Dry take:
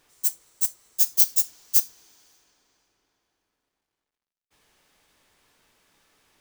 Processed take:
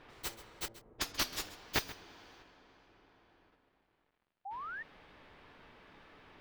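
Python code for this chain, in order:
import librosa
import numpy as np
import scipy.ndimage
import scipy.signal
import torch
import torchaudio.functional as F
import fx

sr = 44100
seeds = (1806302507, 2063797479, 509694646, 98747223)

p1 = fx.level_steps(x, sr, step_db=16)
p2 = x + (p1 * librosa.db_to_amplitude(-1.0))
p3 = fx.env_lowpass(p2, sr, base_hz=530.0, full_db=-15.0, at=(0.68, 1.45))
p4 = fx.fold_sine(p3, sr, drive_db=11, ceiling_db=3.0)
p5 = fx.air_absorb(p4, sr, metres=370.0)
p6 = p5 + fx.echo_single(p5, sr, ms=133, db=-16.5, dry=0)
p7 = fx.spec_paint(p6, sr, seeds[0], shape='rise', start_s=4.45, length_s=0.38, low_hz=750.0, high_hz=1900.0, level_db=-37.0)
y = p7 * librosa.db_to_amplitude(-5.5)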